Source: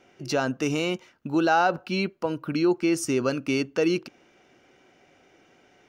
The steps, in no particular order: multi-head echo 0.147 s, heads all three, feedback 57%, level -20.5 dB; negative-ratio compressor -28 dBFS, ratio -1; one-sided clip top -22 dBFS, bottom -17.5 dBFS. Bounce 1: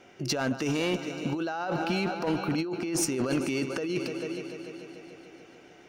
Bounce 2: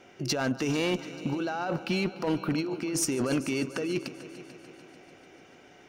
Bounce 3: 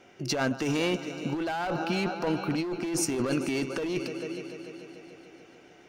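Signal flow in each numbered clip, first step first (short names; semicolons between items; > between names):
multi-head echo > negative-ratio compressor > one-sided clip; negative-ratio compressor > multi-head echo > one-sided clip; multi-head echo > one-sided clip > negative-ratio compressor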